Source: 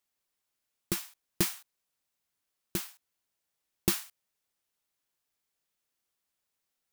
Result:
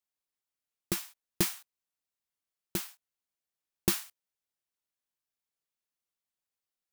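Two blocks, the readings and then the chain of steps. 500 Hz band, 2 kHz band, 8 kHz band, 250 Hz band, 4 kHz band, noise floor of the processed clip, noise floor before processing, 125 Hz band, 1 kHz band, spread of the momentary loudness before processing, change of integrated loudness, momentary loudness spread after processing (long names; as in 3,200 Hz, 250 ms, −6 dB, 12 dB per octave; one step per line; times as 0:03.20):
+0.5 dB, 0.0 dB, 0.0 dB, 0.0 dB, 0.0 dB, below −85 dBFS, −84 dBFS, −0.5 dB, +0.5 dB, 16 LU, 0.0 dB, 16 LU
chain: noise gate −48 dBFS, range −9 dB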